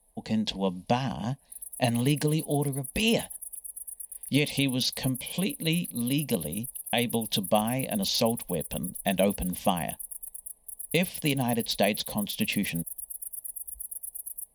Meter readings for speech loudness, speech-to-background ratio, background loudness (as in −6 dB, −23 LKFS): −29.0 LKFS, 8.0 dB, −37.0 LKFS